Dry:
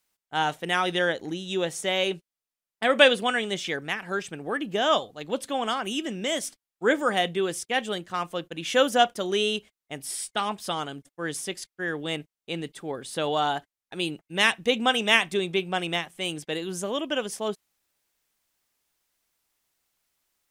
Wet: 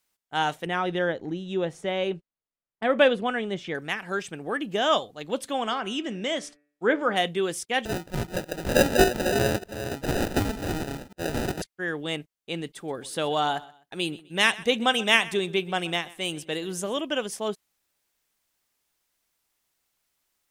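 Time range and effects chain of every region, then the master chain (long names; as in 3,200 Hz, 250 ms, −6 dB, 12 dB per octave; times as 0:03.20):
0:00.66–0:03.75: low-pass filter 1,300 Hz 6 dB per octave + low-shelf EQ 150 Hz +5.5 dB
0:05.63–0:07.16: hum removal 146.4 Hz, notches 18 + treble cut that deepens with the level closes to 2,900 Hz, closed at −19 dBFS + high-shelf EQ 6,700 Hz −6 dB
0:07.85–0:11.62: delay that plays each chunk backwards 298 ms, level −9.5 dB + high-shelf EQ 3,800 Hz +9.5 dB + sample-rate reduction 1,100 Hz
0:12.75–0:17.01: high-shelf EQ 9,300 Hz +3 dB + repeating echo 127 ms, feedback 29%, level −20 dB
whole clip: no processing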